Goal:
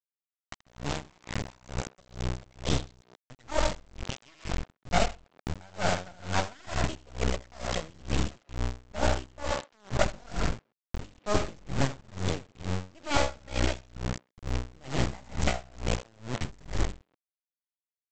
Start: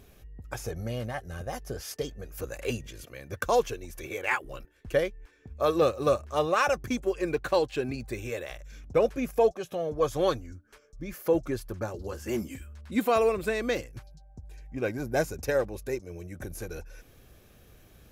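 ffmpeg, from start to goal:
ffmpeg -i in.wav -filter_complex "[0:a]asubboost=boost=9.5:cutoff=110,aeval=exprs='0.266*(cos(1*acos(clip(val(0)/0.266,-1,1)))-cos(1*PI/2))+0.075*(cos(2*acos(clip(val(0)/0.266,-1,1)))-cos(2*PI/2))+0.0531*(cos(3*acos(clip(val(0)/0.266,-1,1)))-cos(3*PI/2))+0.0944*(cos(4*acos(clip(val(0)/0.266,-1,1)))-cos(4*PI/2))+0.00168*(cos(8*acos(clip(val(0)/0.266,-1,1)))-cos(8*PI/2))':channel_layout=same,asplit=2[link_01][link_02];[link_02]aecho=0:1:82|164|246|328:0.398|0.119|0.0358|0.0107[link_03];[link_01][link_03]amix=inputs=2:normalize=0,asetrate=55563,aresample=44100,atempo=0.793701,equalizer=frequency=610:width=6.2:gain=2.5,bandreject=frequency=50:width_type=h:width=6,bandreject=frequency=100:width_type=h:width=6,bandreject=frequency=150:width_type=h:width=6,bandreject=frequency=200:width_type=h:width=6,bandreject=frequency=250:width_type=h:width=6,aresample=16000,acrusher=bits=4:mix=0:aa=0.000001,aresample=44100,asplit=2[link_04][link_05];[link_05]adelay=130,highpass=300,lowpass=3400,asoftclip=type=hard:threshold=-15dB,volume=-11dB[link_06];[link_04][link_06]amix=inputs=2:normalize=0,aeval=exprs='val(0)*pow(10,-30*(0.5-0.5*cos(2*PI*2.2*n/s))/20)':channel_layout=same,volume=2dB" out.wav

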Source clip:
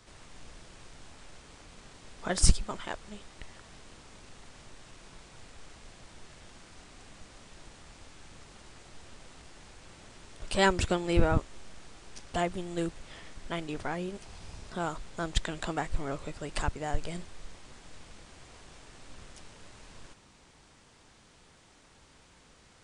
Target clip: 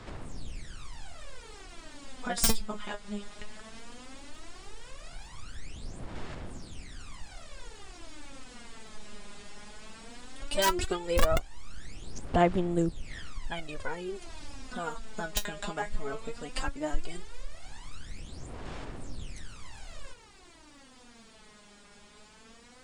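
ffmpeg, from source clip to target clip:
ffmpeg -i in.wav -filter_complex "[0:a]equalizer=frequency=260:width=5:gain=2.5,bandreject=frequency=6000:width=20,asplit=2[link_01][link_02];[link_02]acompressor=threshold=-43dB:ratio=6,volume=2.5dB[link_03];[link_01][link_03]amix=inputs=2:normalize=0,aeval=exprs='(mod(3.98*val(0)+1,2)-1)/3.98':channel_layout=same,aphaser=in_gain=1:out_gain=1:delay=4.9:decay=0.77:speed=0.16:type=sinusoidal,volume=-7dB" out.wav

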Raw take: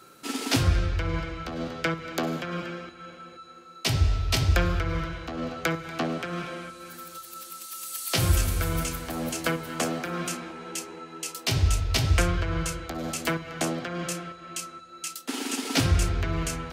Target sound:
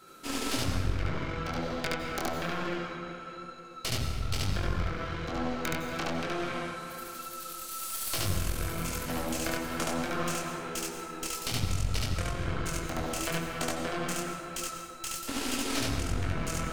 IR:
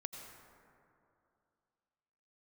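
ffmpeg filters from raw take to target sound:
-filter_complex "[0:a]acompressor=threshold=-29dB:ratio=10,flanger=delay=20:depth=7.4:speed=1.1,aeval=exprs='0.119*(cos(1*acos(clip(val(0)/0.119,-1,1)))-cos(1*PI/2))+0.0422*(cos(4*acos(clip(val(0)/0.119,-1,1)))-cos(4*PI/2))':channel_layout=same,asplit=2[link_01][link_02];[1:a]atrim=start_sample=2205,adelay=72[link_03];[link_02][link_03]afir=irnorm=-1:irlink=0,volume=3.5dB[link_04];[link_01][link_04]amix=inputs=2:normalize=0"

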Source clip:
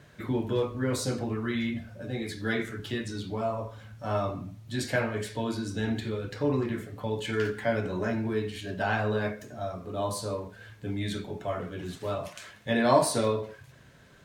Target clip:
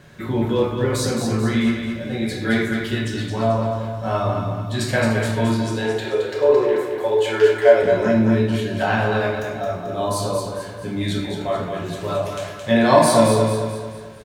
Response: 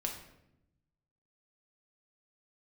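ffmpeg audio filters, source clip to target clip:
-filter_complex "[0:a]asettb=1/sr,asplit=3[link_01][link_02][link_03];[link_01]atrim=end=5.674[link_04];[link_02]atrim=start=5.67:end=7.83,asetpts=PTS-STARTPTS,afade=type=in:duration=0.004:curve=qsin,afade=type=out:start_time=2.156:duration=0.004:curve=qsin,lowshelf=frequency=300:width_type=q:width=3:gain=-13[link_05];[link_03]atrim=start=7.826[link_06];[link_04][link_05]acrossfade=duration=0.004:curve1=hsin:curve2=qsin[link_07];[link_07][link_06]acrossfade=duration=0.004:curve1=qsin:curve2=hsin,aecho=1:1:219|438|657|876|1095:0.501|0.221|0.097|0.0427|0.0188[link_08];[1:a]atrim=start_sample=2205,atrim=end_sample=6174[link_09];[link_08][link_09]afir=irnorm=-1:irlink=0,volume=7dB"

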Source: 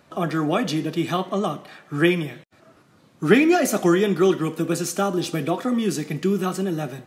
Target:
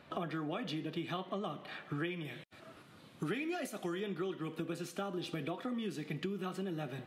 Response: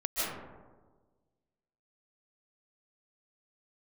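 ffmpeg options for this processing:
-af "asetnsamples=nb_out_samples=441:pad=0,asendcmd='2.25 equalizer g 15;4 equalizer g 5.5',equalizer=frequency=10000:width=0.51:gain=4.5,acompressor=threshold=-33dB:ratio=8,highshelf=frequency=4700:width_type=q:width=1.5:gain=-10.5,volume=-3dB"

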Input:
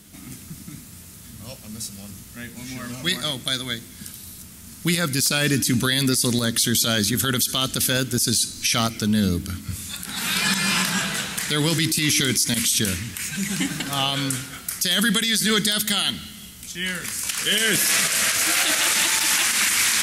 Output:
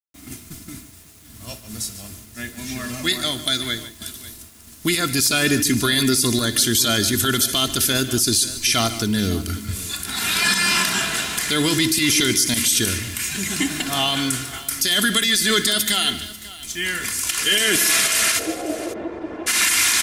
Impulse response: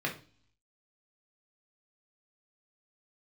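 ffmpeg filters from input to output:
-filter_complex "[0:a]agate=range=-33dB:threshold=-33dB:ratio=3:detection=peak,aecho=1:1:2.9:0.57,asplit=2[link_01][link_02];[link_02]acompressor=threshold=-34dB:ratio=6,volume=-1.5dB[link_03];[link_01][link_03]amix=inputs=2:normalize=0,acrusher=bits=7:mix=0:aa=0.000001,asplit=3[link_04][link_05][link_06];[link_04]afade=type=out:start_time=18.38:duration=0.02[link_07];[link_05]lowpass=frequency=490:width_type=q:width=4.9,afade=type=in:start_time=18.38:duration=0.02,afade=type=out:start_time=19.46:duration=0.02[link_08];[link_06]afade=type=in:start_time=19.46:duration=0.02[link_09];[link_07][link_08][link_09]amix=inputs=3:normalize=0,asplit=2[link_10][link_11];[link_11]aecho=0:1:62|147|542:0.112|0.188|0.126[link_12];[link_10][link_12]amix=inputs=2:normalize=0"

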